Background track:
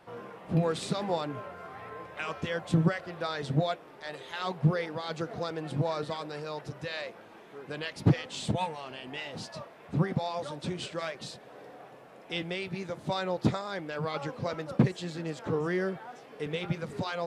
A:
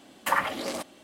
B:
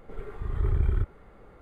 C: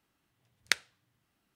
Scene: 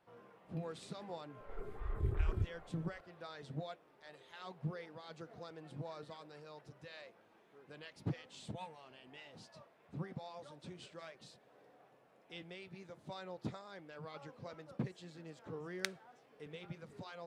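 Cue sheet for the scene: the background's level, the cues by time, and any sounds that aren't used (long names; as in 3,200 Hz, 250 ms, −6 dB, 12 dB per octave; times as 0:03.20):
background track −16 dB
0:01.40: mix in B −4.5 dB + phaser with staggered stages 2.8 Hz
0:15.13: mix in C −12.5 dB
not used: A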